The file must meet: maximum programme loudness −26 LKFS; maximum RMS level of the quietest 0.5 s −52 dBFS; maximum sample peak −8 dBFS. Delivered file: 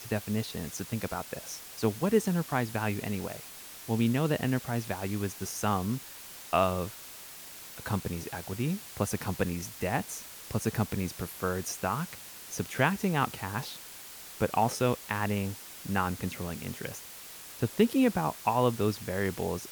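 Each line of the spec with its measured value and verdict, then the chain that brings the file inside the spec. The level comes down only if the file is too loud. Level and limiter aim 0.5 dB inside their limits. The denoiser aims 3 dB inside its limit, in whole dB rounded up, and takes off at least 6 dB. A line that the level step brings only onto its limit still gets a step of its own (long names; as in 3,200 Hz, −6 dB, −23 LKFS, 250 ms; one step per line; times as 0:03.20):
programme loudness −31.5 LKFS: in spec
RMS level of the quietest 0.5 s −46 dBFS: out of spec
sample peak −10.5 dBFS: in spec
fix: broadband denoise 9 dB, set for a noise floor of −46 dBFS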